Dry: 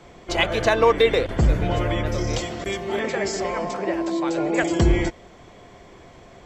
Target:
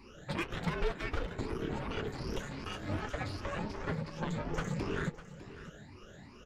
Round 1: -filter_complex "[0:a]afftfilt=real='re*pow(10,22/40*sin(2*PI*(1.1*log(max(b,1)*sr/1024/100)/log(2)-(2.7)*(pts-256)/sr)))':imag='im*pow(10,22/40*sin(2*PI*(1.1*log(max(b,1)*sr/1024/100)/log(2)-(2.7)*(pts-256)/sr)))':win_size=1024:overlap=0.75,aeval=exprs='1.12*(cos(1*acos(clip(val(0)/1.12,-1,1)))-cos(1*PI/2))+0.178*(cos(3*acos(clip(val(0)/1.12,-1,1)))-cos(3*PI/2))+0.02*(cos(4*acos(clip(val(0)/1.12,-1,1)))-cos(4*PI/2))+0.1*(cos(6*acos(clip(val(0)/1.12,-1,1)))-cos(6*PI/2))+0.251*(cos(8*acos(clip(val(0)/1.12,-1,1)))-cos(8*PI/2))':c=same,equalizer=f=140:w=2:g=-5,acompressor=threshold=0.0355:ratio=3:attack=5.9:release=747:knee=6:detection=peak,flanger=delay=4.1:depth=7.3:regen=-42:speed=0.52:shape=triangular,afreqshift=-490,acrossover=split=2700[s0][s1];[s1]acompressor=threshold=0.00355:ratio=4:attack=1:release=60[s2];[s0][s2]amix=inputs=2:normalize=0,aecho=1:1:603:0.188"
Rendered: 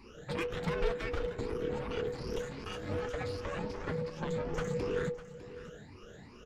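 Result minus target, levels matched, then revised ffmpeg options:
125 Hz band -2.5 dB
-filter_complex "[0:a]afftfilt=real='re*pow(10,22/40*sin(2*PI*(1.1*log(max(b,1)*sr/1024/100)/log(2)-(2.7)*(pts-256)/sr)))':imag='im*pow(10,22/40*sin(2*PI*(1.1*log(max(b,1)*sr/1024/100)/log(2)-(2.7)*(pts-256)/sr)))':win_size=1024:overlap=0.75,aeval=exprs='1.12*(cos(1*acos(clip(val(0)/1.12,-1,1)))-cos(1*PI/2))+0.178*(cos(3*acos(clip(val(0)/1.12,-1,1)))-cos(3*PI/2))+0.02*(cos(4*acos(clip(val(0)/1.12,-1,1)))-cos(4*PI/2))+0.1*(cos(6*acos(clip(val(0)/1.12,-1,1)))-cos(6*PI/2))+0.251*(cos(8*acos(clip(val(0)/1.12,-1,1)))-cos(8*PI/2))':c=same,highpass=f=79:p=1,equalizer=f=140:w=2:g=-5,acompressor=threshold=0.0355:ratio=3:attack=5.9:release=747:knee=6:detection=peak,flanger=delay=4.1:depth=7.3:regen=-42:speed=0.52:shape=triangular,afreqshift=-490,acrossover=split=2700[s0][s1];[s1]acompressor=threshold=0.00355:ratio=4:attack=1:release=60[s2];[s0][s2]amix=inputs=2:normalize=0,aecho=1:1:603:0.188"

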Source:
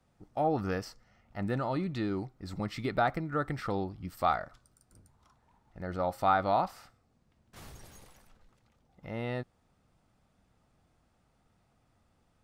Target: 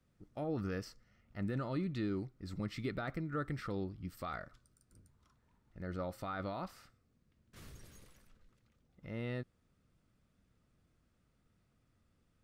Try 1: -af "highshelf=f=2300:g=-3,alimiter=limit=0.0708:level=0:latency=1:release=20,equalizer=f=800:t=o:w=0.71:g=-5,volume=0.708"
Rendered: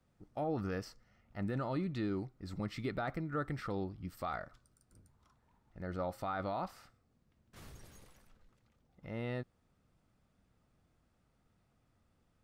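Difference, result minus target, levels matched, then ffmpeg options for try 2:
1 kHz band +3.0 dB
-af "highshelf=f=2300:g=-3,alimiter=limit=0.0708:level=0:latency=1:release=20,equalizer=f=800:t=o:w=0.71:g=-12.5,volume=0.708"

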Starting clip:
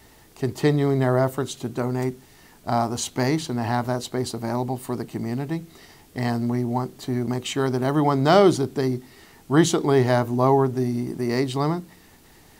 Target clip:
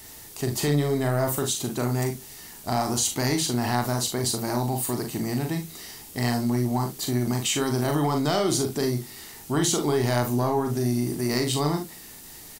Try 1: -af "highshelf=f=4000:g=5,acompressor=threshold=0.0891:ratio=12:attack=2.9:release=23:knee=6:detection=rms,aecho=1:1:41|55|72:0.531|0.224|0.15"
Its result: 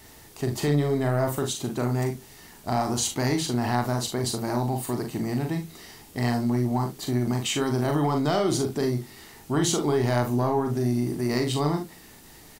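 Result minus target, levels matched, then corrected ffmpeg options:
8 kHz band -3.5 dB
-af "highshelf=f=4000:g=14.5,acompressor=threshold=0.0891:ratio=12:attack=2.9:release=23:knee=6:detection=rms,aecho=1:1:41|55|72:0.531|0.224|0.15"

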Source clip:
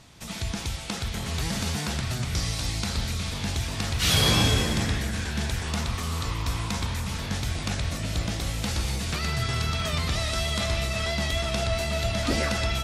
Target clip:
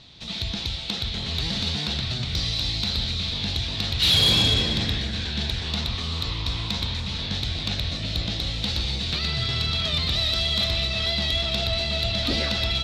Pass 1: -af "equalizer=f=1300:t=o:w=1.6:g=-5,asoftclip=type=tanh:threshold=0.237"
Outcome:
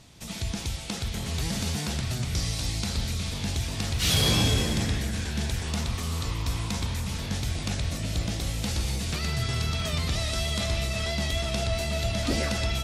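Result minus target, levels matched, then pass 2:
4 kHz band -4.5 dB
-af "lowpass=f=3900:t=q:w=4.8,equalizer=f=1300:t=o:w=1.6:g=-5,asoftclip=type=tanh:threshold=0.237"

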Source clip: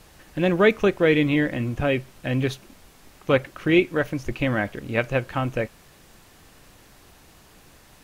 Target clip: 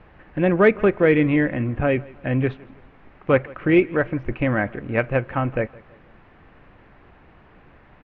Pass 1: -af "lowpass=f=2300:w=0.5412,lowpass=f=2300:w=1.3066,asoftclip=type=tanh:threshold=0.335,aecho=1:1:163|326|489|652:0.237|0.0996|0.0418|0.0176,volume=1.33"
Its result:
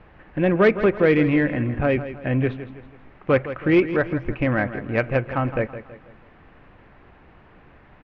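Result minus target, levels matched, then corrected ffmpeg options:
saturation: distortion +14 dB; echo-to-direct +10.5 dB
-af "lowpass=f=2300:w=0.5412,lowpass=f=2300:w=1.3066,asoftclip=type=tanh:threshold=0.841,aecho=1:1:163|326|489:0.0708|0.0297|0.0125,volume=1.33"

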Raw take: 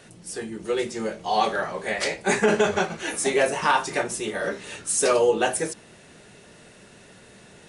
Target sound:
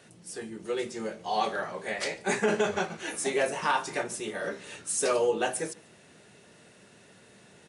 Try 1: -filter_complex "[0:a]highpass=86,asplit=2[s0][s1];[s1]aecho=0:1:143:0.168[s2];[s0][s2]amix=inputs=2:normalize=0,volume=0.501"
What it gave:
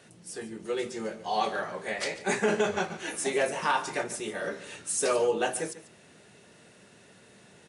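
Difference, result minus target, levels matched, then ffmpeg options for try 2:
echo-to-direct +9 dB
-filter_complex "[0:a]highpass=86,asplit=2[s0][s1];[s1]aecho=0:1:143:0.0596[s2];[s0][s2]amix=inputs=2:normalize=0,volume=0.501"

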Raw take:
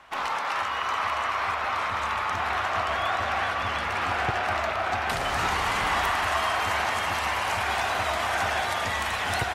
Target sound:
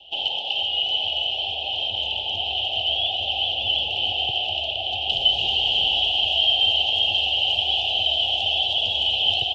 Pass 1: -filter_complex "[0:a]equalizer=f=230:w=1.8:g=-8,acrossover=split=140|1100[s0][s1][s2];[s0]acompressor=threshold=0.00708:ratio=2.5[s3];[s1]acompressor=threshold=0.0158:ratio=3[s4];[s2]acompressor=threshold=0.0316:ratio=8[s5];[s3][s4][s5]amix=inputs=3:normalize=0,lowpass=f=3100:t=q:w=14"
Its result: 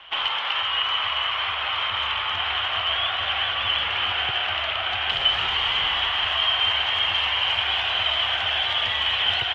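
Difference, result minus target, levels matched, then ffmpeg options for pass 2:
2 kHz band +7.5 dB
-filter_complex "[0:a]asuperstop=centerf=1500:order=20:qfactor=0.81,equalizer=f=230:w=1.8:g=-8,acrossover=split=140|1100[s0][s1][s2];[s0]acompressor=threshold=0.00708:ratio=2.5[s3];[s1]acompressor=threshold=0.0158:ratio=3[s4];[s2]acompressor=threshold=0.0316:ratio=8[s5];[s3][s4][s5]amix=inputs=3:normalize=0,lowpass=f=3100:t=q:w=14"

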